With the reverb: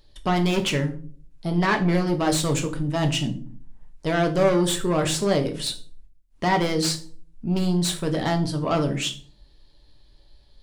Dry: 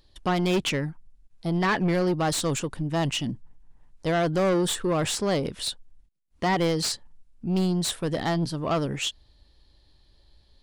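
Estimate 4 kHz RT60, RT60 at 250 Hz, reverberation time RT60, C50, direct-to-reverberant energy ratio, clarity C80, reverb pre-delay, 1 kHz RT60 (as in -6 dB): 0.30 s, 0.65 s, 0.45 s, 13.5 dB, 3.5 dB, 18.5 dB, 3 ms, 0.35 s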